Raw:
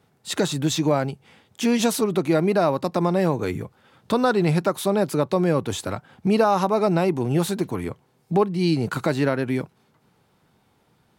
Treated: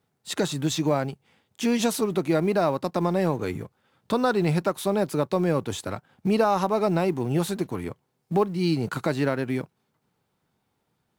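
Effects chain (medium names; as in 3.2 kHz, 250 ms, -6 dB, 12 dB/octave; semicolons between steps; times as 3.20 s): companding laws mixed up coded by A; trim -2.5 dB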